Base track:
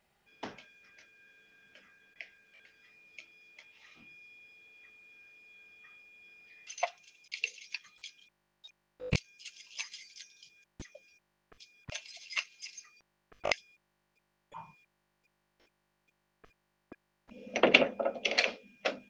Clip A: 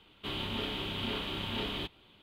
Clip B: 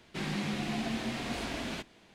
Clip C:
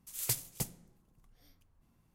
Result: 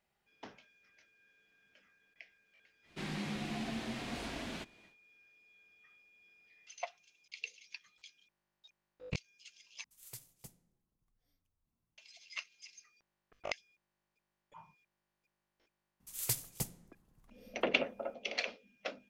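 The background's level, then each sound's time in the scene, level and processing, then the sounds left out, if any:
base track -8.5 dB
2.82 s: add B -5.5 dB, fades 0.10 s
9.84 s: replace with C -17 dB
16.00 s: add C -1.5 dB
not used: A

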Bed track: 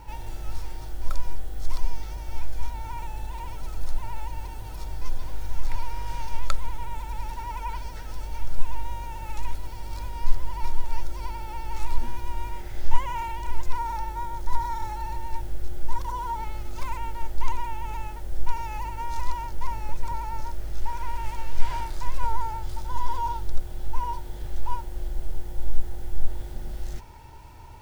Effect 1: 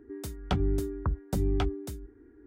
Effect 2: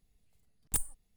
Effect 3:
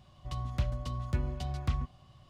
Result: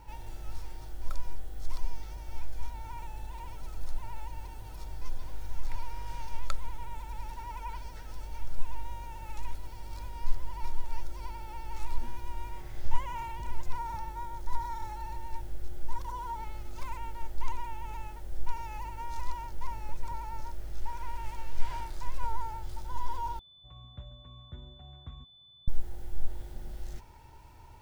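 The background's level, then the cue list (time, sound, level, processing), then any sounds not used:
bed track -7 dB
12.26 s: add 3 -17 dB + low-pass 1.1 kHz
23.39 s: replace with 3 -14.5 dB + class-D stage that switches slowly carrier 3.5 kHz
not used: 1, 2

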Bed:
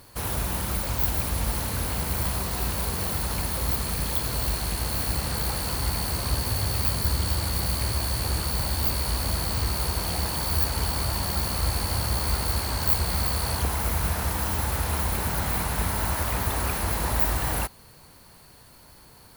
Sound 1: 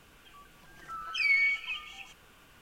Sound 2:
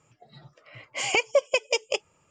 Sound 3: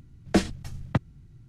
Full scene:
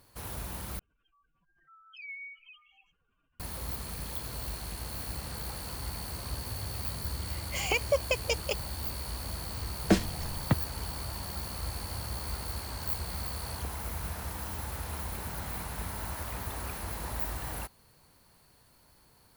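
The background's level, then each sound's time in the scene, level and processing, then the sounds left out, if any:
bed -11 dB
0.79 s: replace with 1 -17 dB + spectral contrast enhancement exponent 2.3
6.57 s: add 2 -5.5 dB
9.56 s: add 3 -2 dB

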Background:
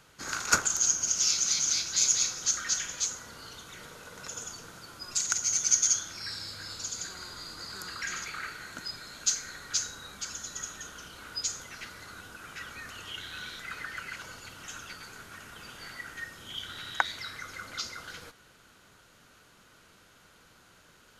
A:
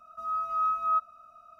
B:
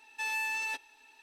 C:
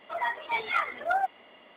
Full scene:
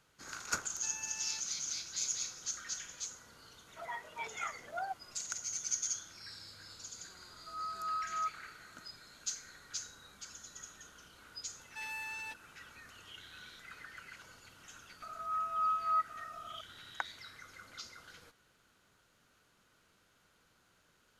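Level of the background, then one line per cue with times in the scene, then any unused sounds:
background -11.5 dB
0.64 s: add B -16 dB
3.67 s: add C -12.5 dB
7.29 s: add A -10 dB
11.57 s: add B -9 dB
15.02 s: add A -5 dB + upward compressor 4:1, threshold -34 dBFS

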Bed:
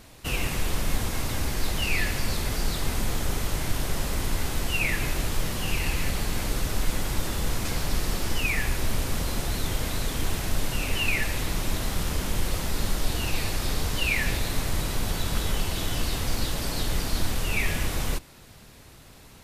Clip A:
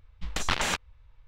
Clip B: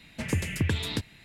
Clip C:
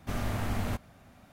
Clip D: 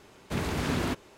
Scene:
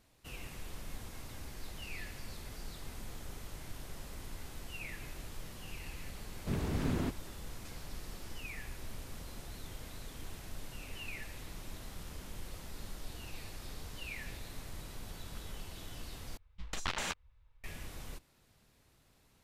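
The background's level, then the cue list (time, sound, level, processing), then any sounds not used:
bed -18.5 dB
6.16 s: add D -12 dB + bass shelf 470 Hz +10 dB
16.37 s: replace with A -9.5 dB + treble shelf 7.6 kHz +2.5 dB
not used: B, C

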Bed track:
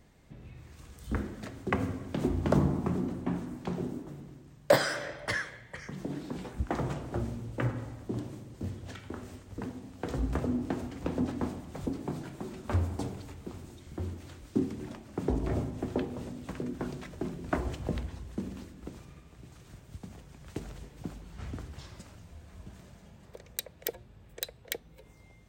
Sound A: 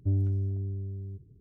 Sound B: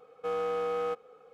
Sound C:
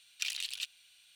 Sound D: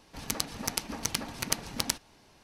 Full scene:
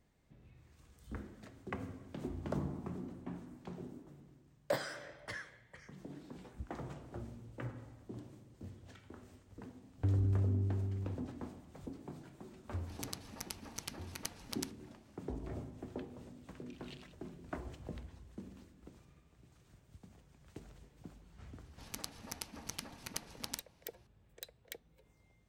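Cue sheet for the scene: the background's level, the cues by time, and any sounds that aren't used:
bed track -12.5 dB
9.98 s: add A -1 dB + compression, threshold -27 dBFS
12.73 s: add D -13 dB
16.48 s: add C -3.5 dB + wah-wah 2.7 Hz 320–1600 Hz, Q 2.3
21.64 s: add D -12.5 dB
not used: B

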